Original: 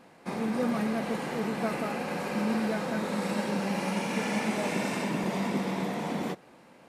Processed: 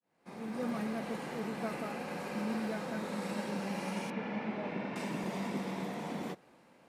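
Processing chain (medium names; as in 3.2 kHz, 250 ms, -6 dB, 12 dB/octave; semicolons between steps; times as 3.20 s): fade-in on the opening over 0.69 s; short-mantissa float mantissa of 6-bit; 4.10–4.96 s: distance through air 330 m; trim -7 dB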